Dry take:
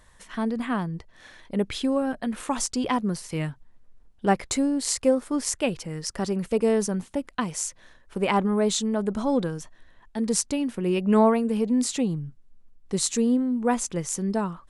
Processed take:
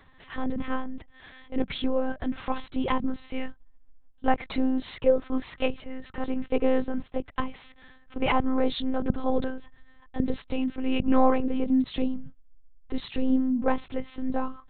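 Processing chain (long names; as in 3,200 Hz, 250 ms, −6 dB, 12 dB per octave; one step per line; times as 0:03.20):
one-pitch LPC vocoder at 8 kHz 260 Hz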